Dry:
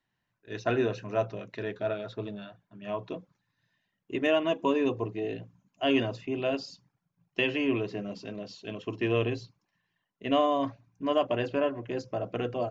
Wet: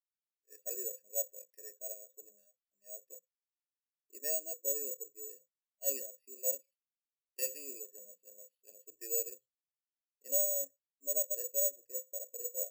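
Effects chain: vowel filter e; careless resampling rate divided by 6×, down none, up zero stuff; spectral expander 1.5:1; gain -7.5 dB

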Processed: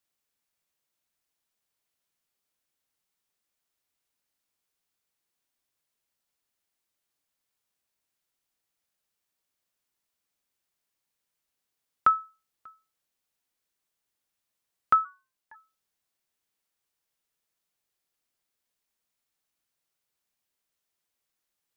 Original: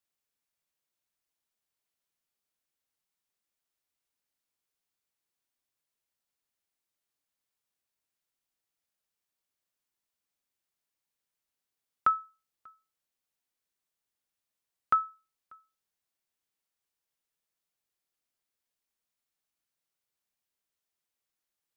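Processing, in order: 15.04–15.54 ring modulator 150 Hz -> 420 Hz; gain +4 dB

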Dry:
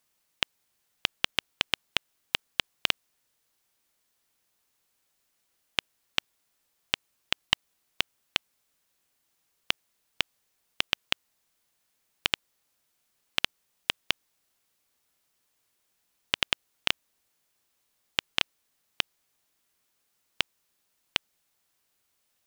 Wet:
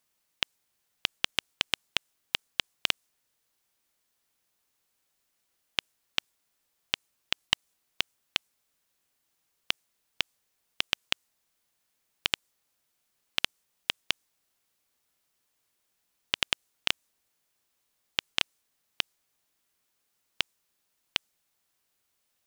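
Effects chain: dynamic EQ 8000 Hz, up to +5 dB, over -49 dBFS, Q 0.76; gain -2 dB

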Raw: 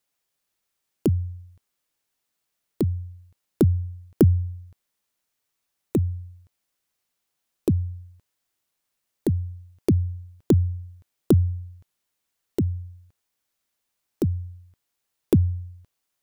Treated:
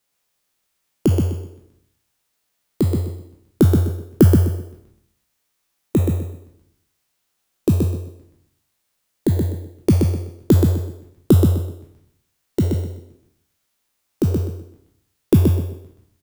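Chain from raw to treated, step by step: spectral trails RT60 0.64 s; feedback echo 0.126 s, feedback 26%, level -4.5 dB; gain +3.5 dB

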